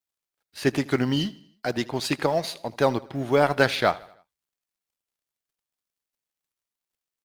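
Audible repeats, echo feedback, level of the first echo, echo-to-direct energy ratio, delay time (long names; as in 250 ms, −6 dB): 3, 50%, −21.0 dB, −20.0 dB, 79 ms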